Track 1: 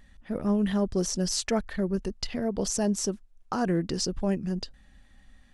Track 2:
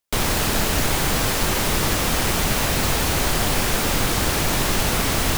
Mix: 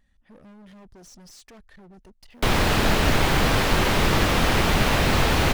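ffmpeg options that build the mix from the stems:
-filter_complex "[0:a]acompressor=threshold=-31dB:ratio=1.5,asoftclip=type=hard:threshold=-35dB,volume=-11dB[a];[1:a]acrossover=split=4400[b][c];[c]acompressor=threshold=-38dB:ratio=4:attack=1:release=60[d];[b][d]amix=inputs=2:normalize=0,adelay=2300,volume=2dB[e];[a][e]amix=inputs=2:normalize=0"

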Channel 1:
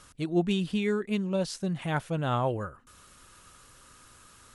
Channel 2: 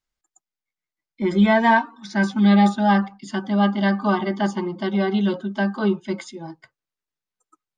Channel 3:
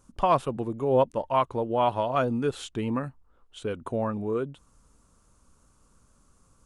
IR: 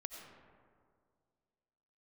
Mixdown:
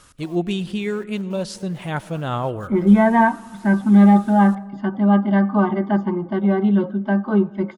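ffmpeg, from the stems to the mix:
-filter_complex "[0:a]volume=2dB,asplit=2[a][b];[b]volume=-9dB[c];[1:a]lowpass=1.6k,lowshelf=f=180:g=7.5,adelay=1500,volume=0dB,asplit=2[d][e];[e]volume=-15dB[f];[2:a]acompressor=threshold=-29dB:ratio=6,acrusher=bits=5:mix=0:aa=0.000001,volume=-17.5dB[g];[3:a]atrim=start_sample=2205[h];[c][f]amix=inputs=2:normalize=0[i];[i][h]afir=irnorm=-1:irlink=0[j];[a][d][g][j]amix=inputs=4:normalize=0"

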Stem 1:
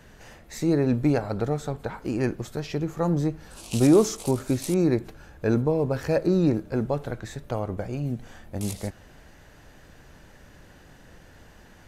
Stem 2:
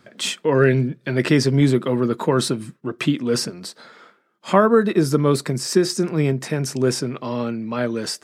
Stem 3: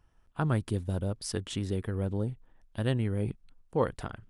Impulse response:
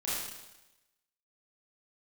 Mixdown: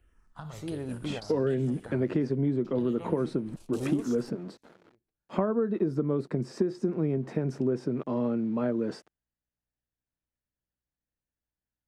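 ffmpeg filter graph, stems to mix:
-filter_complex "[0:a]aeval=exprs='val(0)+0.00355*(sin(2*PI*60*n/s)+sin(2*PI*2*60*n/s)/2+sin(2*PI*3*60*n/s)/3+sin(2*PI*4*60*n/s)/4+sin(2*PI*5*60*n/s)/5)':c=same,volume=-13.5dB[a];[1:a]aeval=exprs='val(0)*gte(abs(val(0)),0.01)':c=same,bandpass=f=290:t=q:w=0.69:csg=0,adelay=850,volume=0dB[b];[2:a]alimiter=limit=-23dB:level=0:latency=1,acrossover=split=310|2300[c][d][e];[c]acompressor=threshold=-49dB:ratio=4[f];[d]acompressor=threshold=-46dB:ratio=4[g];[e]acompressor=threshold=-49dB:ratio=4[h];[f][g][h]amix=inputs=3:normalize=0,asplit=2[i][j];[j]afreqshift=-1.3[k];[i][k]amix=inputs=2:normalize=1,volume=1.5dB,asplit=3[l][m][n];[m]volume=-12dB[o];[n]apad=whole_len=523821[p];[a][p]sidechaingate=range=-33dB:threshold=-56dB:ratio=16:detection=peak[q];[3:a]atrim=start_sample=2205[r];[o][r]afir=irnorm=-1:irlink=0[s];[q][b][l][s]amix=inputs=4:normalize=0,acompressor=threshold=-24dB:ratio=6"

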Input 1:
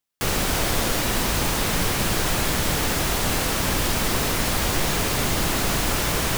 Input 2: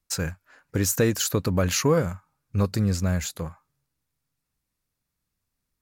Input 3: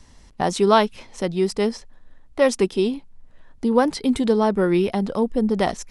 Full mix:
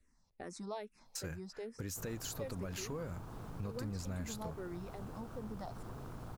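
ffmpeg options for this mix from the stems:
-filter_complex "[0:a]bandreject=f=560:w=12,afwtdn=0.0631,equalizer=f=120:w=3.7:g=10,adelay=1750,volume=-17.5dB[a];[1:a]alimiter=limit=-19.5dB:level=0:latency=1:release=151,adelay=1050,volume=-3.5dB[b];[2:a]agate=range=-6dB:threshold=-42dB:ratio=16:detection=peak,equalizer=f=3.1k:w=6.2:g=-13,asplit=2[c][d];[d]afreqshift=-2.4[e];[c][e]amix=inputs=2:normalize=1,volume=-15dB[f];[a][b][f]amix=inputs=3:normalize=0,acompressor=threshold=-47dB:ratio=2"

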